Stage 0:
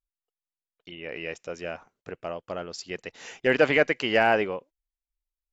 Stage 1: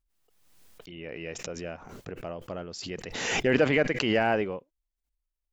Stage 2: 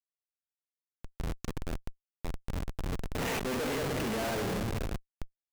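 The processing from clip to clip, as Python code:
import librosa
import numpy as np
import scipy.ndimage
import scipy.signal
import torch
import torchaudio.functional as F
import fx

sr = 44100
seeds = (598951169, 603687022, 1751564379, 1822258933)

y1 = fx.low_shelf(x, sr, hz=340.0, db=10.0)
y1 = fx.pre_swell(y1, sr, db_per_s=39.0)
y1 = y1 * 10.0 ** (-6.5 / 20.0)
y2 = fx.echo_banded(y1, sr, ms=607, feedback_pct=64, hz=2600.0, wet_db=-10)
y2 = fx.room_shoebox(y2, sr, seeds[0], volume_m3=2700.0, walls='mixed', distance_m=1.6)
y2 = fx.schmitt(y2, sr, flips_db=-27.5)
y2 = y2 * 10.0 ** (-4.0 / 20.0)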